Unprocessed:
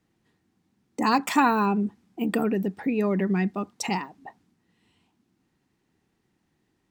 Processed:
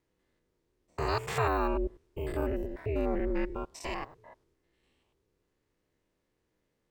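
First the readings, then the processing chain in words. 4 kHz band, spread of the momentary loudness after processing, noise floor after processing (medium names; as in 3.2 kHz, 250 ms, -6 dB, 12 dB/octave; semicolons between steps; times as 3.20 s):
-8.0 dB, 10 LU, -79 dBFS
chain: spectrogram pixelated in time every 100 ms; ring modulator 160 Hz; trim -2 dB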